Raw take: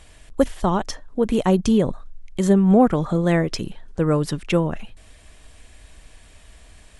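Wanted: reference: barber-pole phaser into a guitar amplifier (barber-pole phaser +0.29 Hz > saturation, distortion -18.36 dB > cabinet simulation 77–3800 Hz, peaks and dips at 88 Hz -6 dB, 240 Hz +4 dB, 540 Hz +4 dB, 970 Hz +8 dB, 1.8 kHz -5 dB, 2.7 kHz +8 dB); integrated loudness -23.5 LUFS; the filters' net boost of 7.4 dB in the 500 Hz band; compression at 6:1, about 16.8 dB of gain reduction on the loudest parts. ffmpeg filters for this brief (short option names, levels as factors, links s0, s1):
-filter_complex "[0:a]equalizer=f=500:t=o:g=5.5,acompressor=threshold=0.0501:ratio=6,asplit=2[s0][s1];[s1]afreqshift=0.29[s2];[s0][s2]amix=inputs=2:normalize=1,asoftclip=threshold=0.0708,highpass=77,equalizer=f=88:t=q:w=4:g=-6,equalizer=f=240:t=q:w=4:g=4,equalizer=f=540:t=q:w=4:g=4,equalizer=f=970:t=q:w=4:g=8,equalizer=f=1800:t=q:w=4:g=-5,equalizer=f=2700:t=q:w=4:g=8,lowpass=f=3800:w=0.5412,lowpass=f=3800:w=1.3066,volume=2.99"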